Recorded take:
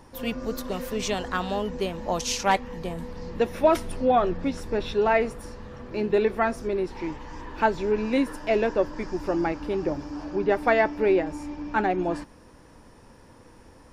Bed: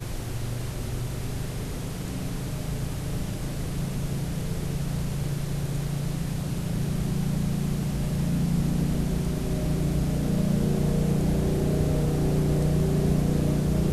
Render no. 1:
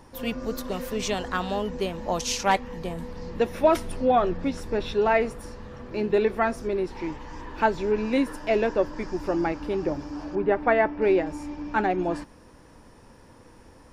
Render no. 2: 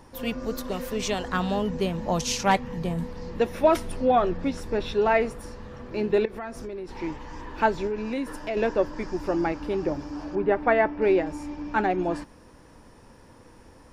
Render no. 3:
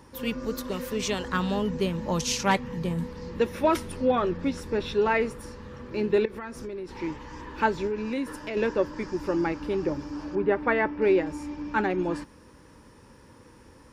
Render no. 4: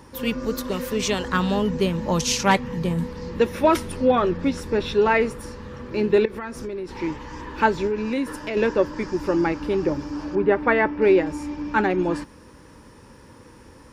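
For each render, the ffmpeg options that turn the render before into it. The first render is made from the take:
-filter_complex "[0:a]asettb=1/sr,asplit=3[a][b][c];[a]atrim=end=10.354[d];[b]atrim=start=10.35:end=11.02,asetpts=PTS-STARTPTS,afade=t=in:d=0.004:c=qsin,afade=t=out:st=0.666:d=0.004:c=qsin,lowpass=2.4k[e];[c]atrim=start=11.016[f];[d][e]acrossfade=d=0.004:c1=hsin:c2=qsin[g];[g][f]acrossfade=d=0.004:c1=qsin:c2=hsin"
-filter_complex "[0:a]asettb=1/sr,asplit=3[a][b][c];[a]atrim=end=1.324[d];[b]atrim=start=1.32:end=3.07,asetpts=PTS-STARTPTS,afade=t=in:d=0.004:c=qsin,afade=t=out:st=1.746:d=0.004:c=qsin,equalizer=f=150:w=1.5:g=9[e];[c]atrim=start=3.066[f];[d][e]acrossfade=d=0.004:c1=hsin:c2=qsin[g];[g][f]acrossfade=d=0.004:c1=qsin:c2=hsin,asettb=1/sr,asplit=3[h][i][j];[h]atrim=end=6.254[k];[i]atrim=start=6.25:end=6.89,asetpts=PTS-STARTPTS,afade=t=in:d=0.004:c=qsin,afade=t=out:st=0.636:d=0.004:c=qsin,acompressor=threshold=-32dB:ratio=6:attack=3.2:release=140:knee=1:detection=peak[l];[j]atrim=start=6.886[m];[k][l]acrossfade=d=0.004:c1=hsin:c2=qsin[n];[n][m]acrossfade=d=0.004:c1=qsin:c2=hsin,asettb=1/sr,asplit=3[o][p][q];[o]atrim=end=7.874[r];[p]atrim=start=7.87:end=8.57,asetpts=PTS-STARTPTS,afade=t=in:d=0.004:c=qsin,afade=t=out:st=0.696:d=0.004:c=qsin,acompressor=threshold=-28dB:ratio=2.5:attack=3.2:release=140:knee=1:detection=peak[s];[q]atrim=start=8.566[t];[r][s]acrossfade=d=0.004:c1=hsin:c2=qsin[u];[u][t]acrossfade=d=0.004:c1=qsin:c2=hsin"
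-af "highpass=42,equalizer=f=700:t=o:w=0.22:g=-14"
-af "volume=5dB"

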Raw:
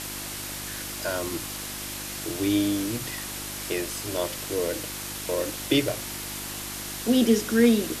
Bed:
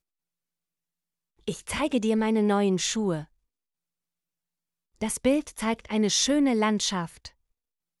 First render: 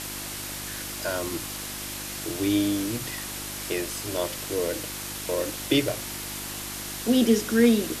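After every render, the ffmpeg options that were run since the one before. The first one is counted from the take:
-af anull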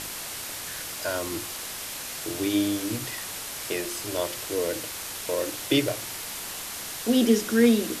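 -af "bandreject=f=50:t=h:w=4,bandreject=f=100:t=h:w=4,bandreject=f=150:t=h:w=4,bandreject=f=200:t=h:w=4,bandreject=f=250:t=h:w=4,bandreject=f=300:t=h:w=4,bandreject=f=350:t=h:w=4"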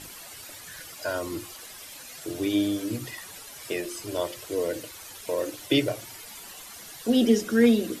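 -af "afftdn=nr=12:nf=-36"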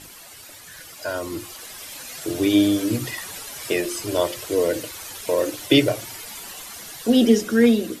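-af "dynaudnorm=f=660:g=5:m=8dB"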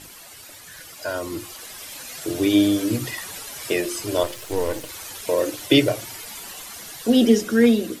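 -filter_complex "[0:a]asettb=1/sr,asplit=3[a][b][c];[a]atrim=end=4.234[d];[b]atrim=start=4.23:end=4.89,asetpts=PTS-STARTPTS,afade=t=in:d=0.004:c=qsin,afade=t=out:st=0.656:d=0.004:c=qsin,aeval=exprs='if(lt(val(0),0),0.251*val(0),val(0))':c=same[e];[c]atrim=start=4.886[f];[d][e]acrossfade=d=0.004:c1=hsin:c2=qsin[g];[g][f]acrossfade=d=0.004:c1=qsin:c2=hsin"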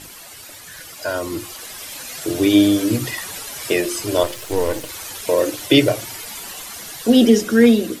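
-af "volume=4dB,alimiter=limit=-2dB:level=0:latency=1"

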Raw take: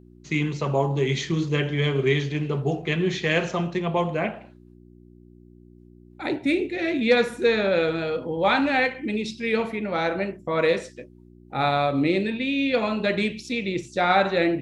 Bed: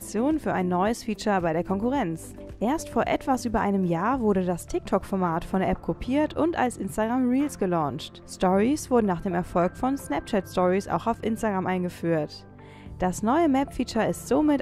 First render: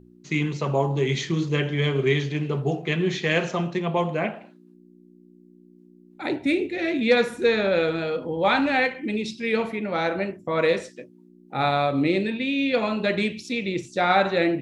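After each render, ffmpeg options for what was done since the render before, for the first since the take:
-af "bandreject=f=60:t=h:w=4,bandreject=f=120:t=h:w=4"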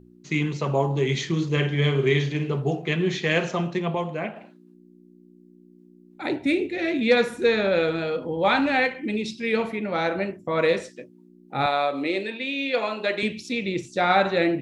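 -filter_complex "[0:a]asettb=1/sr,asplit=3[a][b][c];[a]atrim=end=1.524[d];[b]atrim=start=1.52:end=2.52,asetpts=PTS-STARTPTS,afade=t=in:d=0.004:c=qsin,afade=t=out:st=0.996:d=0.004:c=qsin,asplit=2[e][f];[f]adelay=49,volume=-8dB[g];[e][g]amix=inputs=2:normalize=0,atrim=end_sample=44100[h];[c]atrim=start=2.516[i];[d][h]acrossfade=d=0.004:c1=hsin:c2=qsin[j];[j][i]acrossfade=d=0.004:c1=qsin:c2=hsin,asettb=1/sr,asplit=3[k][l][m];[k]atrim=end=11.664[n];[l]atrim=start=11.66:end=13.23,asetpts=PTS-STARTPTS,afade=t=in:d=0.004:c=qsin,afade=t=out:st=1.566:d=0.004:c=qsin,highpass=390[o];[m]atrim=start=13.226[p];[n][o]acrossfade=d=0.004:c1=hsin:c2=qsin[q];[q][p]acrossfade=d=0.004:c1=qsin:c2=hsin,asplit=3[r][s][t];[r]atrim=end=3.952[u];[s]atrim=start=3.948:end=4.362,asetpts=PTS-STARTPTS,volume=-4dB[v];[t]atrim=start=4.358[w];[u][v]acrossfade=d=0.004:c1=hsin:c2=hsin[x];[x][w]acrossfade=d=0.004:c1=hsin:c2=hsin"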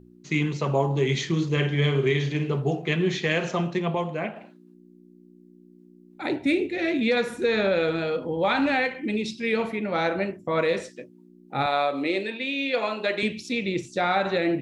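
-af "alimiter=limit=-13dB:level=0:latency=1:release=97"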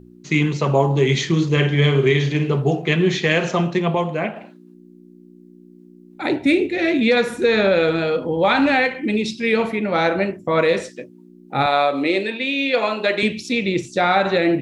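-af "volume=6.5dB"

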